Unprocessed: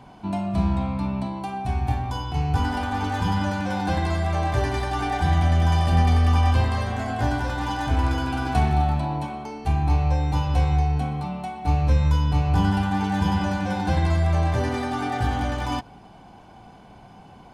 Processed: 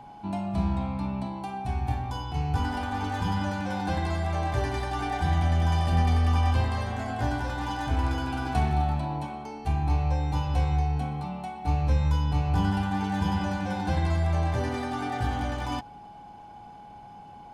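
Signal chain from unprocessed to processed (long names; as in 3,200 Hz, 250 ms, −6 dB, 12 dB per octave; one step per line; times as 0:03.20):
steady tone 830 Hz −40 dBFS
level −4.5 dB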